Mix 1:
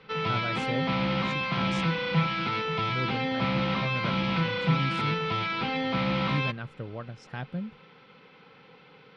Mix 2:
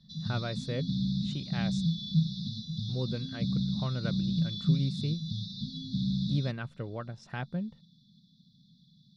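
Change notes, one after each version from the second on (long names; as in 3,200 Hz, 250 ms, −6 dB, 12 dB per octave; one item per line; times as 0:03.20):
background: add linear-phase brick-wall band-stop 250–3,400 Hz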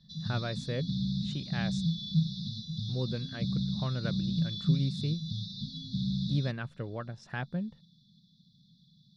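background: add parametric band 280 Hz −7 dB 0.64 octaves
master: remove notch filter 1,700 Hz, Q 14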